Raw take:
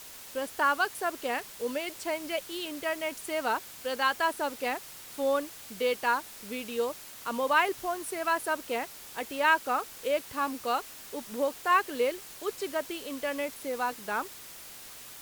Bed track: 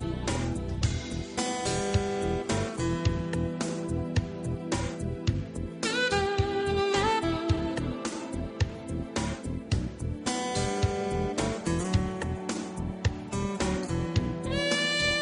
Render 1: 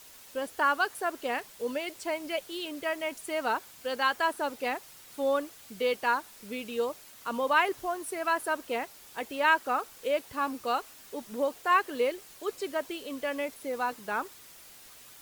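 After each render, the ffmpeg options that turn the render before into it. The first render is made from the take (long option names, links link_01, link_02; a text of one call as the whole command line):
ffmpeg -i in.wav -af "afftdn=noise_reduction=6:noise_floor=-47" out.wav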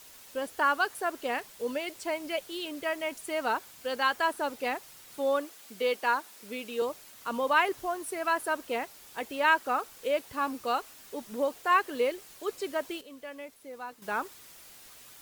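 ffmpeg -i in.wav -filter_complex "[0:a]asettb=1/sr,asplit=3[link_01][link_02][link_03];[link_01]atrim=end=5.184[link_04];[link_02]atrim=start=5.18:end=6.82,asetpts=PTS-STARTPTS,afade=type=in:duration=0.004:curve=qsin,afade=type=out:start_time=1.636:duration=0.004:curve=qsin,highpass=230[link_05];[link_03]atrim=start=6.816[link_06];[link_04][link_05]acrossfade=duration=0.004:curve1=hsin:curve2=qsin[link_07];[link_07][link_06]acrossfade=duration=0.004:curve1=qsin:curve2=hsin,asplit=3[link_08][link_09][link_10];[link_08]atrim=end=13.012[link_11];[link_09]atrim=start=13.008:end=14.022,asetpts=PTS-STARTPTS,volume=-10dB[link_12];[link_10]atrim=start=14.018[link_13];[link_11][link_12]acrossfade=duration=0.004:curve1=hsin:curve2=hsin[link_14];[link_14][link_13]acrossfade=duration=0.004:curve1=hsin:curve2=hsin" out.wav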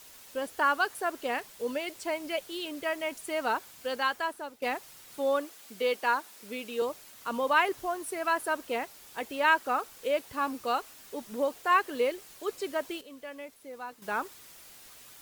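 ffmpeg -i in.wav -filter_complex "[0:a]asplit=2[link_01][link_02];[link_01]atrim=end=4.62,asetpts=PTS-STARTPTS,afade=type=out:start_time=3.88:duration=0.74:silence=0.199526[link_03];[link_02]atrim=start=4.62,asetpts=PTS-STARTPTS,afade=type=in:duration=0.004:curve=hsin:silence=0.199526[link_04];[link_03][link_04]concat=n=2:v=0:a=1" out.wav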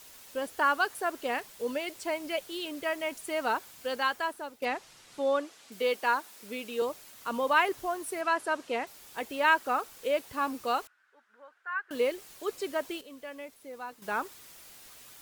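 ffmpeg -i in.wav -filter_complex "[0:a]asettb=1/sr,asplit=3[link_01][link_02][link_03];[link_01]atrim=end=4.654[link_04];[link_02]atrim=start=4.65:end=5.72,asetpts=PTS-STARTPTS,afade=type=in:duration=0.004:curve=qsin,afade=type=out:start_time=1.066:duration=0.004:curve=qsin,lowpass=7400[link_05];[link_03]atrim=start=5.716[link_06];[link_04][link_05]acrossfade=duration=0.004:curve1=hsin:curve2=qsin[link_07];[link_07][link_06]acrossfade=duration=0.004:curve1=qsin:curve2=hsin,asettb=1/sr,asplit=3[link_08][link_09][link_10];[link_08]atrim=end=8.214[link_11];[link_09]atrim=start=8.21:end=8.87,asetpts=PTS-STARTPTS,afade=type=in:duration=0.004:curve=qsin,afade=type=out:start_time=0.656:duration=0.004:curve=qsin,highpass=110,lowpass=8000[link_12];[link_10]atrim=start=8.866[link_13];[link_11][link_12]acrossfade=duration=0.004:curve1=hsin:curve2=qsin[link_14];[link_14][link_13]acrossfade=duration=0.004:curve1=qsin:curve2=hsin,asettb=1/sr,asplit=3[link_15][link_16][link_17];[link_15]atrim=end=10.874[link_18];[link_16]atrim=start=10.87:end=11.91,asetpts=PTS-STARTPTS,afade=type=in:duration=0.004:curve=qsin,afade=type=out:start_time=1.036:duration=0.004:curve=qsin,bandpass=frequency=1500:width_type=q:width=8.1[link_19];[link_17]atrim=start=11.906[link_20];[link_18][link_19]acrossfade=duration=0.004:curve1=hsin:curve2=qsin[link_21];[link_21][link_20]acrossfade=duration=0.004:curve1=qsin:curve2=hsin" out.wav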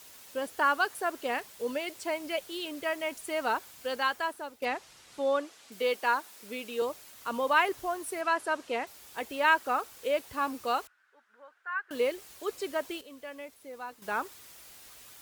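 ffmpeg -i in.wav -af "highpass=58,asubboost=boost=2.5:cutoff=78" out.wav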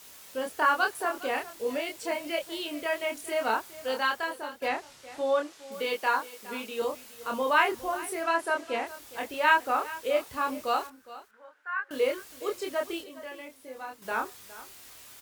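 ffmpeg -i in.wav -filter_complex "[0:a]asplit=2[link_01][link_02];[link_02]adelay=27,volume=-3dB[link_03];[link_01][link_03]amix=inputs=2:normalize=0,aecho=1:1:412:0.141" out.wav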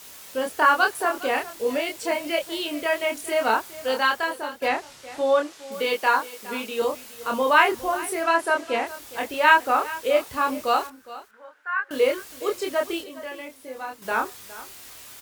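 ffmpeg -i in.wav -af "volume=6dB" out.wav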